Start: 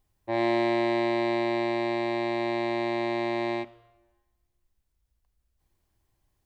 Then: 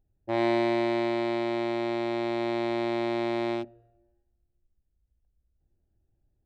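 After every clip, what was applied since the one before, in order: local Wiener filter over 41 samples; gain riding 2 s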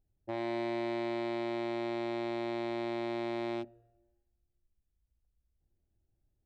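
peak limiter -20.5 dBFS, peak gain reduction 6 dB; trim -5 dB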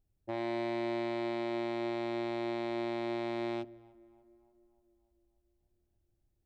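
tape echo 294 ms, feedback 68%, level -20.5 dB, low-pass 1.5 kHz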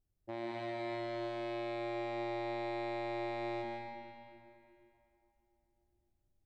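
reverberation RT60 2.8 s, pre-delay 105 ms, DRR -0.5 dB; trim -5.5 dB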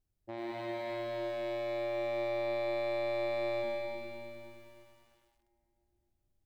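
bit-crushed delay 101 ms, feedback 80%, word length 11-bit, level -7 dB

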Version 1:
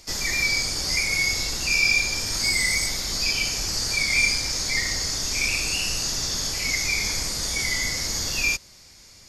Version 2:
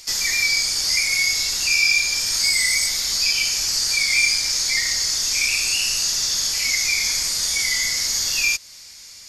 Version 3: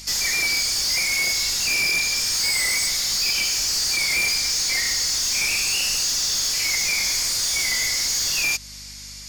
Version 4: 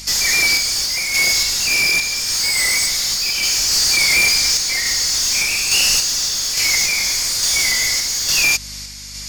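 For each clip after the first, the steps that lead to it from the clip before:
tilt shelf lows -8 dB, about 1.1 kHz; in parallel at +0.5 dB: compression, threshold -24 dBFS, peak gain reduction 12.5 dB; on the sum: trim -5 dB
hum 50 Hz, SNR 28 dB; saturation -21.5 dBFS, distortion -10 dB; trim +3 dB
random-step tremolo; trim +8 dB

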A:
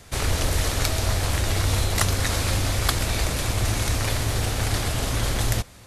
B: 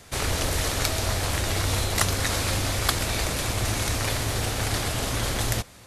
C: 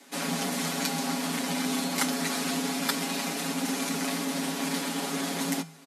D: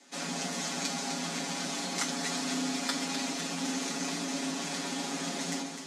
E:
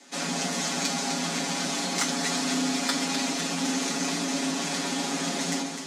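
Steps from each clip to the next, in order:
bass shelf 110 Hz -6.5 dB
feedback comb 320 Hz, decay 0.33 s, harmonics all, mix 60%; frequency shift +160 Hz; comb 7.2 ms, depth 92%
resonant low-pass 6.8 kHz, resonance Q 1.7; echo whose repeats swap between lows and highs 127 ms, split 1.1 kHz, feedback 81%, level -6.5 dB; on a send at -6 dB: reverberation, pre-delay 6 ms; on the sum: trim -6.5 dB
saturation -19.5 dBFS, distortion -29 dB; trim +6 dB

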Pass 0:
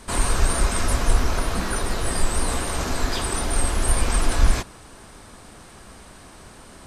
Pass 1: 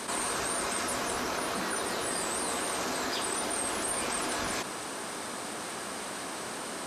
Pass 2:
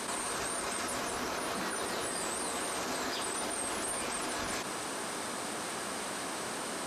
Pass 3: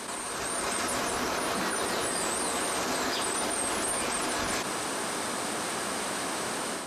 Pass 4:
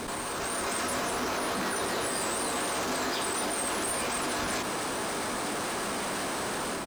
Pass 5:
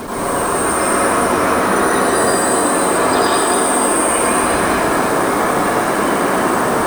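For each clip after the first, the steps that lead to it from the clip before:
high-pass 260 Hz 12 dB/octave; level flattener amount 70%; trim -7 dB
peak limiter -26 dBFS, peak gain reduction 6 dB
level rider gain up to 5.5 dB
doubling 20 ms -13 dB; in parallel at -4.5 dB: Schmitt trigger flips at -34 dBFS; on the sum: trim -4 dB
loudest bins only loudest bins 64; in parallel at -8 dB: companded quantiser 2-bit; on the sum: reverberation RT60 2.6 s, pre-delay 83 ms, DRR -8.5 dB; trim +3.5 dB

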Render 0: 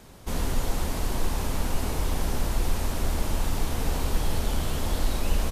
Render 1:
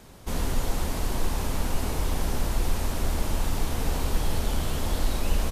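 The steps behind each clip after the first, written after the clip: no audible change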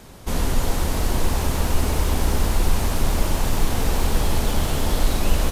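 bit-crushed delay 324 ms, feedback 80%, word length 8-bit, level -10 dB; trim +5.5 dB

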